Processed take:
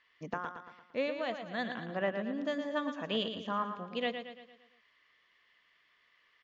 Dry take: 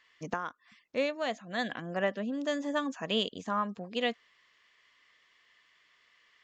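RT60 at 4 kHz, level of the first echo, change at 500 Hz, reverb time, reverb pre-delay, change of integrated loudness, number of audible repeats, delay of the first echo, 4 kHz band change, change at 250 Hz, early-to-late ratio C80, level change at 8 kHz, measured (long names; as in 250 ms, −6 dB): no reverb audible, −8.0 dB, −2.0 dB, no reverb audible, no reverb audible, −2.5 dB, 5, 114 ms, −4.0 dB, −2.5 dB, no reverb audible, can't be measured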